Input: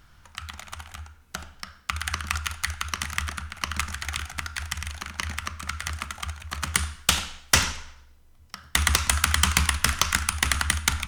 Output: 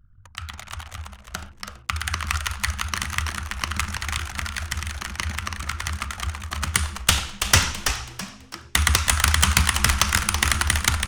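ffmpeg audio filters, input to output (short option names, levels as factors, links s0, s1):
-filter_complex "[0:a]anlmdn=0.00631,equalizer=f=99:w=5.5:g=13.5,asplit=5[s0][s1][s2][s3][s4];[s1]adelay=329,afreqshift=-140,volume=0.447[s5];[s2]adelay=658,afreqshift=-280,volume=0.138[s6];[s3]adelay=987,afreqshift=-420,volume=0.0432[s7];[s4]adelay=1316,afreqshift=-560,volume=0.0133[s8];[s0][s5][s6][s7][s8]amix=inputs=5:normalize=0,volume=1.26"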